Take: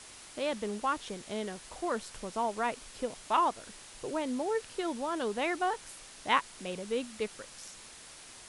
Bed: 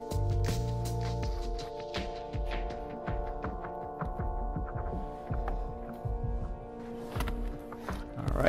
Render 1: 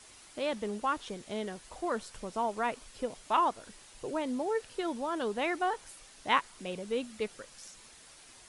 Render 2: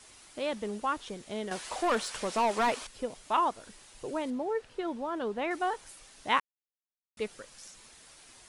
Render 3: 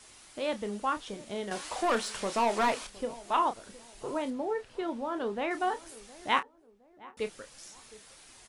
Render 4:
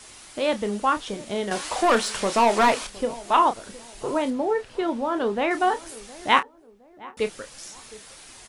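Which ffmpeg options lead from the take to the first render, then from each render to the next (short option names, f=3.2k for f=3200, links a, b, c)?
-af "afftdn=nr=6:nf=-51"
-filter_complex "[0:a]asettb=1/sr,asplit=3[a][b][c];[a]atrim=end=1.514[d];[b]atrim=start=1.51:end=2.87,asetpts=PTS-STARTPTS,afade=t=in:d=0.004:c=qsin,afade=t=out:st=1.356:d=0.004:c=qsin,asplit=2[e][f];[f]highpass=f=720:p=1,volume=20dB,asoftclip=type=tanh:threshold=-19.5dB[g];[e][g]amix=inputs=2:normalize=0,lowpass=f=5.9k:p=1,volume=-6dB[h];[c]atrim=start=2.866[i];[d][h]acrossfade=d=0.004:c1=hsin:c2=qsin[j];[j][i]acrossfade=d=0.004:c1=qsin:c2=hsin,asettb=1/sr,asplit=3[k][l][m];[k]atrim=end=4.304[n];[l]atrim=start=4.3:end=5.51,asetpts=PTS-STARTPTS,afade=t=in:d=0.004:c=qsin,afade=t=out:st=1.206:d=0.004:c=qsin,lowpass=f=2.2k:p=1[o];[m]atrim=start=5.506[p];[n][o]acrossfade=d=0.004:c1=hsin:c2=qsin[q];[q][p]acrossfade=d=0.004:c1=qsin:c2=hsin,asplit=3[r][s][t];[r]atrim=end=6.4,asetpts=PTS-STARTPTS,afade=t=out:st=6.396:d=0.004:c=hsin[u];[s]atrim=start=6.4:end=7.17,asetpts=PTS-STARTPTS,volume=0[v];[t]atrim=start=7.17,asetpts=PTS-STARTPTS,afade=t=in:d=0.004:c=hsin[w];[u][v][w]concat=n=3:v=0:a=1"
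-filter_complex "[0:a]asplit=2[a][b];[b]adelay=30,volume=-10dB[c];[a][c]amix=inputs=2:normalize=0,asplit=2[d][e];[e]adelay=714,lowpass=f=1k:p=1,volume=-18.5dB,asplit=2[f][g];[g]adelay=714,lowpass=f=1k:p=1,volume=0.38,asplit=2[h][i];[i]adelay=714,lowpass=f=1k:p=1,volume=0.38[j];[d][f][h][j]amix=inputs=4:normalize=0"
-af "volume=8.5dB"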